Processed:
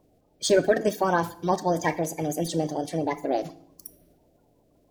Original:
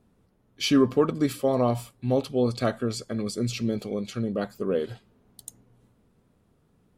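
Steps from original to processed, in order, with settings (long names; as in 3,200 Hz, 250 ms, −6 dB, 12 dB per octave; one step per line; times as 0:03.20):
spectral magnitudes quantised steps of 30 dB
change of speed 1.42×
feedback delay network reverb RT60 0.61 s, low-frequency decay 1.4×, high-frequency decay 0.95×, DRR 12.5 dB
level +1 dB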